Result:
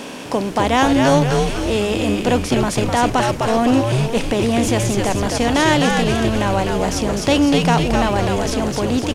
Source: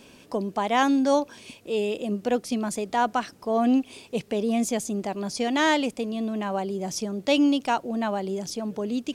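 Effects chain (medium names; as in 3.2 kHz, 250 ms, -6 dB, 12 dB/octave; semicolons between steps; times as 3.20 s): spectral levelling over time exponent 0.6; frequency-shifting echo 254 ms, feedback 54%, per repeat -120 Hz, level -3 dB; trim +3.5 dB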